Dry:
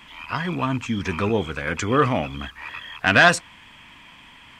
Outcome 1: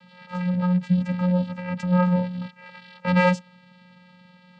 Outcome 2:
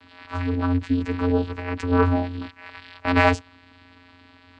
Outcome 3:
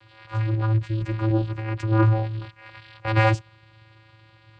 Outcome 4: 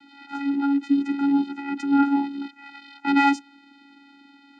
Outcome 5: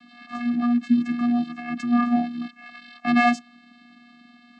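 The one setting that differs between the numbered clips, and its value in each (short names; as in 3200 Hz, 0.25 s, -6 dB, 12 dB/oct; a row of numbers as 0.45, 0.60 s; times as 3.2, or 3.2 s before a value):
vocoder, frequency: 180, 89, 110, 280, 240 Hz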